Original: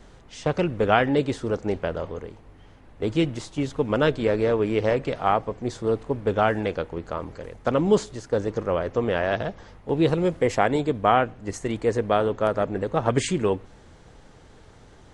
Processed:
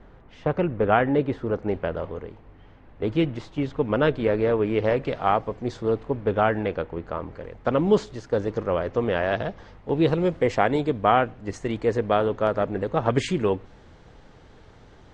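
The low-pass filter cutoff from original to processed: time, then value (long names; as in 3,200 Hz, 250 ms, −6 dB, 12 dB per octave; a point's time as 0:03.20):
0:01.38 2,000 Hz
0:01.92 3,100 Hz
0:04.63 3,100 Hz
0:05.42 5,900 Hz
0:06.47 2,900 Hz
0:07.40 2,900 Hz
0:08.10 4,900 Hz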